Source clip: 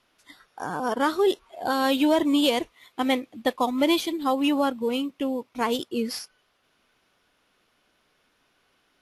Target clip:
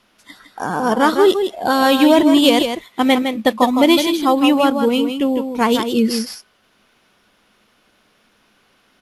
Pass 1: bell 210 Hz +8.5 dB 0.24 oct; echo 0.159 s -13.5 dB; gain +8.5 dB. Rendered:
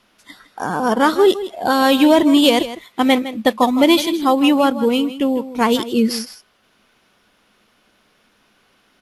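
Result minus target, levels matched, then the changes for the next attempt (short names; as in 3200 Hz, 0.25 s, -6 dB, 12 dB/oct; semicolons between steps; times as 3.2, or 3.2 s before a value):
echo-to-direct -6.5 dB
change: echo 0.159 s -7 dB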